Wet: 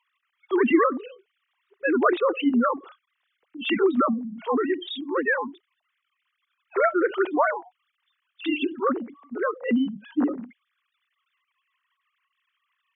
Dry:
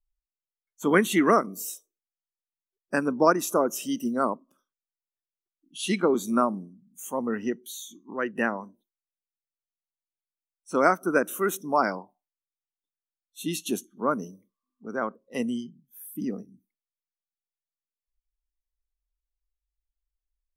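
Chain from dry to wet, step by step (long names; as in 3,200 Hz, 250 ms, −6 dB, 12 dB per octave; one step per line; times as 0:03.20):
three sine waves on the formant tracks
tape wow and flutter 17 cents
time stretch by overlap-add 0.63×, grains 161 ms
envelope flattener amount 50%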